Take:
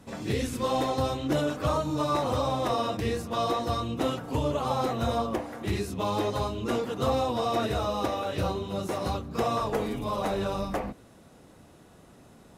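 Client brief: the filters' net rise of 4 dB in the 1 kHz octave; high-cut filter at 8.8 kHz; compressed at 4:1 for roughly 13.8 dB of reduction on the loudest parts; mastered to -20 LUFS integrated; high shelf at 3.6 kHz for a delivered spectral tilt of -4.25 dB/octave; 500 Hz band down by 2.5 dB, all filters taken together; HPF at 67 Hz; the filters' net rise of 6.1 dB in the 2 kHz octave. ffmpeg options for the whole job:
-af "highpass=67,lowpass=8800,equalizer=f=500:t=o:g=-5,equalizer=f=1000:t=o:g=5,equalizer=f=2000:t=o:g=7.5,highshelf=f=3600:g=-3.5,acompressor=threshold=0.0112:ratio=4,volume=10"

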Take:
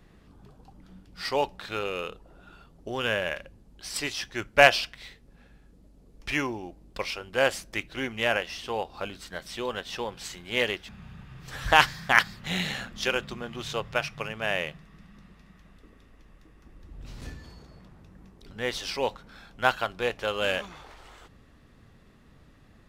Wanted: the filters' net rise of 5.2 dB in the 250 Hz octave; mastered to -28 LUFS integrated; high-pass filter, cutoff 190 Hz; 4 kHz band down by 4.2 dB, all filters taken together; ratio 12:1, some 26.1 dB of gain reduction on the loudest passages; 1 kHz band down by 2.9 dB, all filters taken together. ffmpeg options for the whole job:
-af "highpass=190,equalizer=f=250:t=o:g=8.5,equalizer=f=1000:t=o:g=-4.5,equalizer=f=4000:t=o:g=-6,acompressor=threshold=0.0112:ratio=12,volume=7.5"

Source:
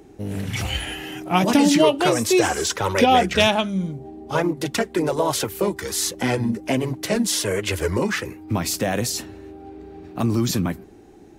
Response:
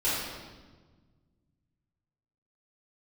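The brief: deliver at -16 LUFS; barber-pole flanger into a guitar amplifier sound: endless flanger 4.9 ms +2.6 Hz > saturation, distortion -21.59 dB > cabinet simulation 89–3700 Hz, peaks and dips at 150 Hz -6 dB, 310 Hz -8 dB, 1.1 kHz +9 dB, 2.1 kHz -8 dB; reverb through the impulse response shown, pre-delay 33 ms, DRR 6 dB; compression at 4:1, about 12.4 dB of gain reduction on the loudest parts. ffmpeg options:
-filter_complex "[0:a]acompressor=threshold=0.0447:ratio=4,asplit=2[s0][s1];[1:a]atrim=start_sample=2205,adelay=33[s2];[s1][s2]afir=irnorm=-1:irlink=0,volume=0.141[s3];[s0][s3]amix=inputs=2:normalize=0,asplit=2[s4][s5];[s5]adelay=4.9,afreqshift=2.6[s6];[s4][s6]amix=inputs=2:normalize=1,asoftclip=threshold=0.0841,highpass=89,equalizer=f=150:t=q:w=4:g=-6,equalizer=f=310:t=q:w=4:g=-8,equalizer=f=1100:t=q:w=4:g=9,equalizer=f=2100:t=q:w=4:g=-8,lowpass=f=3700:w=0.5412,lowpass=f=3700:w=1.3066,volume=8.91"

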